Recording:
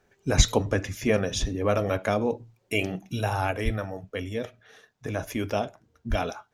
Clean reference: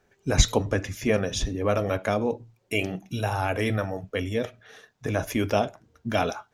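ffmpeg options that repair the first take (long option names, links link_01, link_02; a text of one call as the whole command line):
ffmpeg -i in.wav -filter_complex "[0:a]asplit=3[link_01][link_02][link_03];[link_01]afade=type=out:start_time=3.64:duration=0.02[link_04];[link_02]highpass=frequency=140:width=0.5412,highpass=frequency=140:width=1.3066,afade=type=in:start_time=3.64:duration=0.02,afade=type=out:start_time=3.76:duration=0.02[link_05];[link_03]afade=type=in:start_time=3.76:duration=0.02[link_06];[link_04][link_05][link_06]amix=inputs=3:normalize=0,asplit=3[link_07][link_08][link_09];[link_07]afade=type=out:start_time=6.09:duration=0.02[link_10];[link_08]highpass=frequency=140:width=0.5412,highpass=frequency=140:width=1.3066,afade=type=in:start_time=6.09:duration=0.02,afade=type=out:start_time=6.21:duration=0.02[link_11];[link_09]afade=type=in:start_time=6.21:duration=0.02[link_12];[link_10][link_11][link_12]amix=inputs=3:normalize=0,asetnsamples=nb_out_samples=441:pad=0,asendcmd='3.51 volume volume 4dB',volume=0dB" out.wav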